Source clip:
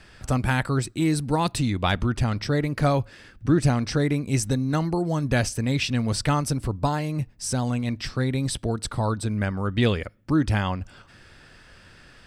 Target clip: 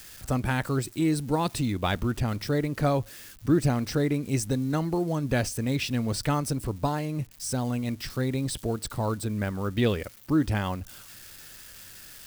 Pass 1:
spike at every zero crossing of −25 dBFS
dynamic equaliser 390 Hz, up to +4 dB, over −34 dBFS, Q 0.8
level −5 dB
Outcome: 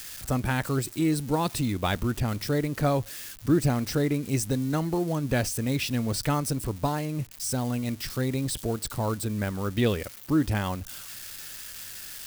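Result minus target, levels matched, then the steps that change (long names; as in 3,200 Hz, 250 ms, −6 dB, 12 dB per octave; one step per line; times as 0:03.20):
spike at every zero crossing: distortion +6 dB
change: spike at every zero crossing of −31.5 dBFS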